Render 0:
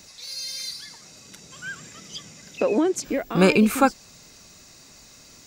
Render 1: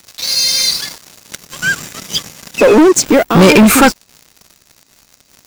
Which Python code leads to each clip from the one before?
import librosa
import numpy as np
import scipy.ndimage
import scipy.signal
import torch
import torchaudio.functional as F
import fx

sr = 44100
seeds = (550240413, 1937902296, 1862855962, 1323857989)

y = fx.leveller(x, sr, passes=5)
y = y * 10.0 ** (1.5 / 20.0)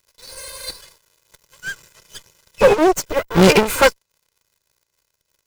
y = fx.lower_of_two(x, sr, delay_ms=2.0)
y = fx.upward_expand(y, sr, threshold_db=-18.0, expansion=2.5)
y = y * 10.0 ** (-1.0 / 20.0)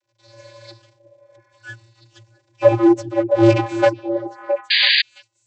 y = fx.vocoder(x, sr, bands=32, carrier='square', carrier_hz=114.0)
y = fx.echo_stepped(y, sr, ms=333, hz=200.0, octaves=1.4, feedback_pct=70, wet_db=-2.5)
y = fx.spec_paint(y, sr, seeds[0], shape='noise', start_s=4.7, length_s=0.32, low_hz=1600.0, high_hz=4800.0, level_db=-15.0)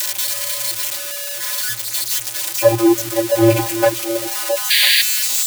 y = x + 0.5 * 10.0 ** (-10.0 / 20.0) * np.diff(np.sign(x), prepend=np.sign(x[:1]))